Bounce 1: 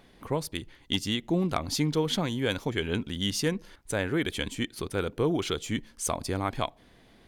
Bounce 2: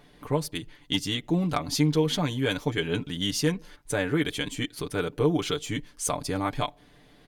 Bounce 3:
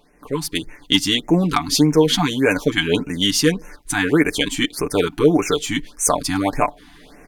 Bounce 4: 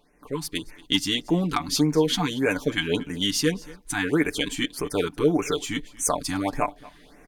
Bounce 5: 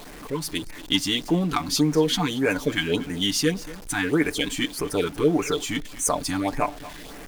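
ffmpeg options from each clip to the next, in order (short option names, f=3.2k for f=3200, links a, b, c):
-af "aecho=1:1:6.8:0.7"
-af "equalizer=f=120:w=1.9:g=-12,dynaudnorm=f=260:g=3:m=14dB,afftfilt=real='re*(1-between(b*sr/1024,460*pow(4000/460,0.5+0.5*sin(2*PI*1.7*pts/sr))/1.41,460*pow(4000/460,0.5+0.5*sin(2*PI*1.7*pts/sr))*1.41))':imag='im*(1-between(b*sr/1024,460*pow(4000/460,0.5+0.5*sin(2*PI*1.7*pts/sr))/1.41,460*pow(4000/460,0.5+0.5*sin(2*PI*1.7*pts/sr))*1.41))':win_size=1024:overlap=0.75"
-af "aecho=1:1:231:0.0841,volume=-6.5dB"
-af "aeval=exprs='val(0)+0.5*0.0158*sgn(val(0))':c=same"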